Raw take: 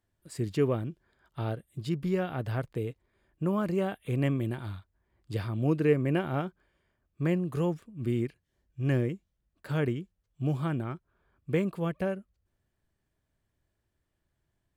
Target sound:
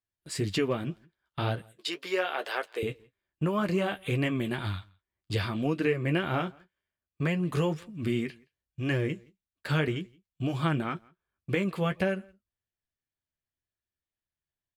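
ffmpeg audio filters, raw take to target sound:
ffmpeg -i in.wav -filter_complex "[0:a]asettb=1/sr,asplit=3[link_01][link_02][link_03];[link_01]atrim=end=1.654[link_04];[link_02]atrim=start=1.65:end=2.83,asetpts=PTS-STARTPTS,afade=type=in:duration=0.004:curve=qsin,afade=type=out:start_time=1.176:duration=0.004:curve=qsin,highpass=frequency=410:width=0.5412,highpass=frequency=410:width=1.3066[link_05];[link_03]atrim=start=2.826[link_06];[link_04][link_05]acrossfade=duration=0.004:curve1=hsin:curve2=qsin[link_07];[link_07][link_06]acrossfade=duration=0.004:curve1=qsin:curve2=hsin,agate=range=-23dB:threshold=-52dB:ratio=16:detection=peak,equalizer=frequency=3200:width=0.43:gain=10,acompressor=threshold=-27dB:ratio=6,flanger=delay=9.8:depth=3.8:regen=-33:speed=1.9:shape=sinusoidal,asplit=2[link_08][link_09];[link_09]adelay=169.1,volume=-27dB,highshelf=frequency=4000:gain=-3.8[link_10];[link_08][link_10]amix=inputs=2:normalize=0,volume=7dB" out.wav

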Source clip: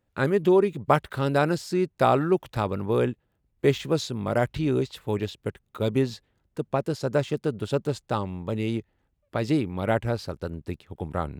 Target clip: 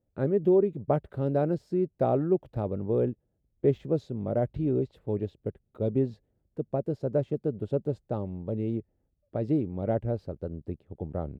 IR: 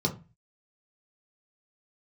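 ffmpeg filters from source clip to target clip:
-af "firequalizer=gain_entry='entry(610,0);entry(1000,-14);entry(2900,-19);entry(6300,-24)':delay=0.05:min_phase=1,volume=-2.5dB"

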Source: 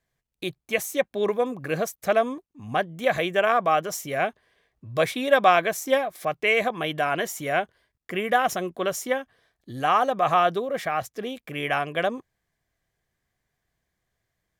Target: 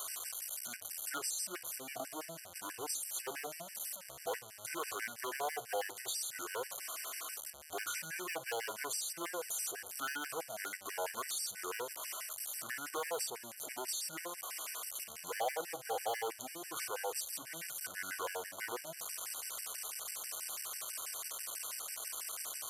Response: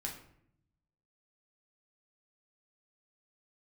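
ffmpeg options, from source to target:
-filter_complex "[0:a]aeval=exprs='val(0)+0.5*0.0376*sgn(val(0))':channel_layout=same,asetrate=28356,aresample=44100,volume=18dB,asoftclip=hard,volume=-18dB,aderivative,bandreject=frequency=50:width_type=h:width=6,bandreject=frequency=100:width_type=h:width=6,bandreject=frequency=150:width_type=h:width=6,bandreject=frequency=200:width_type=h:width=6,asplit=2[link_01][link_02];[1:a]atrim=start_sample=2205,asetrate=88200,aresample=44100,lowpass=7100[link_03];[link_02][link_03]afir=irnorm=-1:irlink=0,volume=-6.5dB[link_04];[link_01][link_04]amix=inputs=2:normalize=0,acrossover=split=500[link_05][link_06];[link_06]acompressor=threshold=-36dB:ratio=4[link_07];[link_05][link_07]amix=inputs=2:normalize=0,equalizer=frequency=250:width_type=o:width=0.67:gain=-7,equalizer=frequency=630:width_type=o:width=0.67:gain=10,equalizer=frequency=4000:width_type=o:width=0.67:gain=-5,afftfilt=real='re*gt(sin(2*PI*6.1*pts/sr)*(1-2*mod(floor(b*sr/1024/1500),2)),0)':imag='im*gt(sin(2*PI*6.1*pts/sr)*(1-2*mod(floor(b*sr/1024/1500),2)),0)':win_size=1024:overlap=0.75,volume=3dB"

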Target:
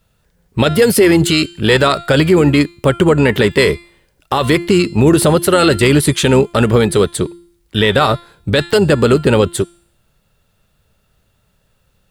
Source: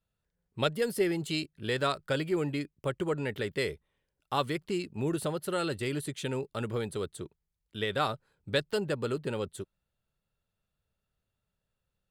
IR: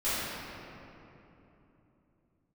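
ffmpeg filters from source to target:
-filter_complex "[0:a]bandreject=frequency=344.8:width_type=h:width=4,bandreject=frequency=689.6:width_type=h:width=4,bandreject=frequency=1034.4:width_type=h:width=4,bandreject=frequency=1379.2:width_type=h:width=4,bandreject=frequency=1724:width_type=h:width=4,bandreject=frequency=2068.8:width_type=h:width=4,bandreject=frequency=2413.6:width_type=h:width=4,bandreject=frequency=2758.4:width_type=h:width=4,bandreject=frequency=3103.2:width_type=h:width=4,bandreject=frequency=3448:width_type=h:width=4,bandreject=frequency=3792.8:width_type=h:width=4,bandreject=frequency=4137.6:width_type=h:width=4,bandreject=frequency=4482.4:width_type=h:width=4,bandreject=frequency=4827.2:width_type=h:width=4,bandreject=frequency=5172:width_type=h:width=4,bandreject=frequency=5516.8:width_type=h:width=4,bandreject=frequency=5861.6:width_type=h:width=4,bandreject=frequency=6206.4:width_type=h:width=4,bandreject=frequency=6551.2:width_type=h:width=4,bandreject=frequency=6896:width_type=h:width=4,bandreject=frequency=7240.8:width_type=h:width=4,bandreject=frequency=7585.6:width_type=h:width=4,bandreject=frequency=7930.4:width_type=h:width=4,bandreject=frequency=8275.2:width_type=h:width=4,bandreject=frequency=8620:width_type=h:width=4,bandreject=frequency=8964.8:width_type=h:width=4,bandreject=frequency=9309.6:width_type=h:width=4,bandreject=frequency=9654.4:width_type=h:width=4,bandreject=frequency=9999.2:width_type=h:width=4,bandreject=frequency=10344:width_type=h:width=4,bandreject=frequency=10688.8:width_type=h:width=4,bandreject=frequency=11033.6:width_type=h:width=4,bandreject=frequency=11378.4:width_type=h:width=4,asplit=2[link_01][link_02];[link_02]asetrate=22050,aresample=44100,atempo=2,volume=-15dB[link_03];[link_01][link_03]amix=inputs=2:normalize=0,alimiter=level_in=24.5dB:limit=-1dB:release=50:level=0:latency=1,volume=-1dB"

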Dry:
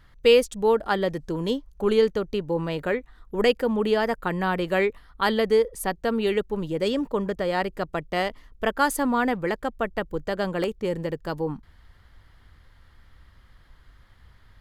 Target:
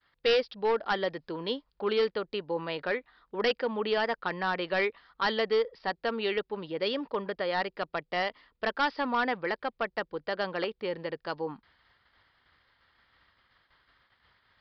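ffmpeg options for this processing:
ffmpeg -i in.wav -af "agate=range=-33dB:threshold=-48dB:ratio=3:detection=peak,highpass=frequency=780:poles=1,aresample=11025,asoftclip=type=hard:threshold=-21dB,aresample=44100" out.wav

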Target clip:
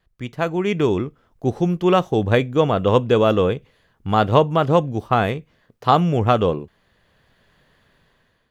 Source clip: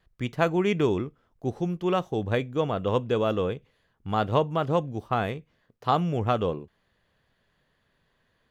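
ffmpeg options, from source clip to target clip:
ffmpeg -i in.wav -af "dynaudnorm=framelen=310:gausssize=5:maxgain=12dB" out.wav

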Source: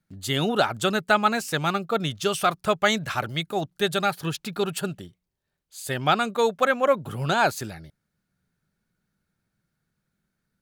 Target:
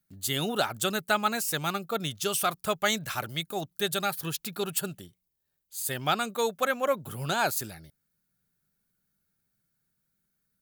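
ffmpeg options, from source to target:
ffmpeg -i in.wav -af "aemphasis=mode=production:type=50fm,volume=-6dB" out.wav

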